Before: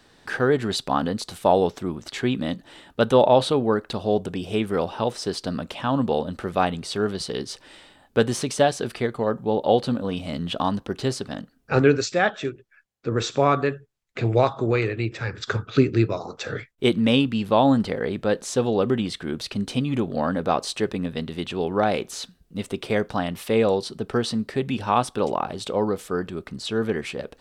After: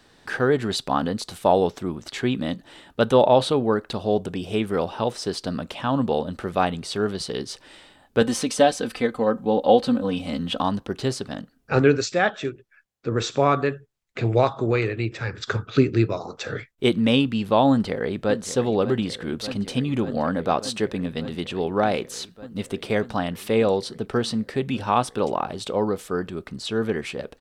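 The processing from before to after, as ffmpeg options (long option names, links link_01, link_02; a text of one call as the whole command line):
ffmpeg -i in.wav -filter_complex "[0:a]asettb=1/sr,asplit=3[link_01][link_02][link_03];[link_01]atrim=end=8.214[link_04];[link_02]atrim=start=8.21:end=10.61,asetpts=PTS-STARTPTS,afade=type=in:duration=0.004:curve=qsin,afade=type=out:start_time=2.396:duration=0.004:curve=qsin,aecho=1:1:3.9:0.65,atrim=end_sample=105840[link_05];[link_03]atrim=start=10.606[link_06];[link_04][link_05]acrossfade=duration=0.004:curve1=hsin:curve2=qsin[link_07];[link_07][link_06]acrossfade=duration=0.004:curve1=qsin:curve2=hsin,asplit=2[link_08][link_09];[link_09]afade=type=in:start_time=17.7:duration=0.01,afade=type=out:start_time=18.33:duration=0.01,aecho=0:1:590|1180|1770|2360|2950|3540|4130|4720|5310|5900|6490|7080:0.251189|0.21351|0.181484|0.154261|0.131122|0.111454|0.0947357|0.0805253|0.0684465|0.0581795|0.0494526|0.0420347[link_10];[link_08][link_10]amix=inputs=2:normalize=0" out.wav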